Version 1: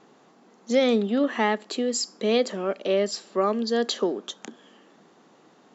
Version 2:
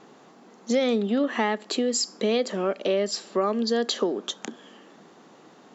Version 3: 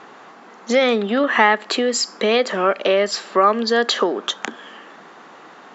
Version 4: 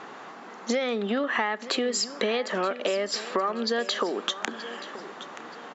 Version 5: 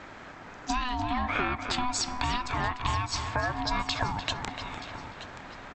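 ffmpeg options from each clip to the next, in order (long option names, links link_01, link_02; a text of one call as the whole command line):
ffmpeg -i in.wav -af "acompressor=threshold=-27dB:ratio=2.5,volume=4.5dB" out.wav
ffmpeg -i in.wav -af "equalizer=frequency=1500:width=0.43:gain=15" out.wav
ffmpeg -i in.wav -af "acompressor=threshold=-24dB:ratio=6,aecho=1:1:927|1854|2781:0.178|0.0658|0.0243" out.wav
ffmpeg -i in.wav -filter_complex "[0:a]aeval=exprs='val(0)*sin(2*PI*500*n/s)':channel_layout=same,asplit=2[link_01][link_02];[link_02]adelay=297,lowpass=frequency=2500:poles=1,volume=-7dB,asplit=2[link_03][link_04];[link_04]adelay=297,lowpass=frequency=2500:poles=1,volume=0.5,asplit=2[link_05][link_06];[link_06]adelay=297,lowpass=frequency=2500:poles=1,volume=0.5,asplit=2[link_07][link_08];[link_08]adelay=297,lowpass=frequency=2500:poles=1,volume=0.5,asplit=2[link_09][link_10];[link_10]adelay=297,lowpass=frequency=2500:poles=1,volume=0.5,asplit=2[link_11][link_12];[link_12]adelay=297,lowpass=frequency=2500:poles=1,volume=0.5[link_13];[link_01][link_03][link_05][link_07][link_09][link_11][link_13]amix=inputs=7:normalize=0" out.wav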